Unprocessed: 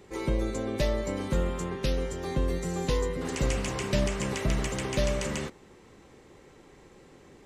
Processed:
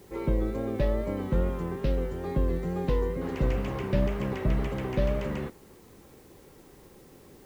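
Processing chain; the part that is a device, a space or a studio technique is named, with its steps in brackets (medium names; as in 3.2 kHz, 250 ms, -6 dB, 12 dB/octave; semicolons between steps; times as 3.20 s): cassette deck with a dirty head (tape spacing loss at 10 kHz 35 dB; wow and flutter; white noise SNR 33 dB); trim +2 dB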